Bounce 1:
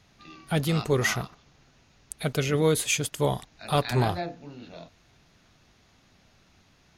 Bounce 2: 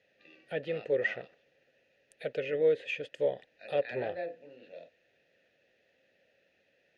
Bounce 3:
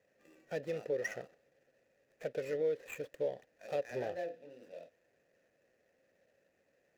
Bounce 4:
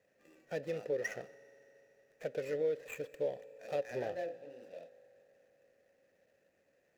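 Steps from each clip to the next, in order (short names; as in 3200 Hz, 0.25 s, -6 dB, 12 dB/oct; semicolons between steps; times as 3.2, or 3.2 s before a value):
treble ducked by the level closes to 2900 Hz, closed at -21.5 dBFS; vowel filter e; gain +5 dB
median filter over 15 samples; compressor 2:1, threshold -34 dBFS, peak gain reduction 7 dB; gain -1 dB
reverb RT60 3.7 s, pre-delay 3 ms, DRR 17.5 dB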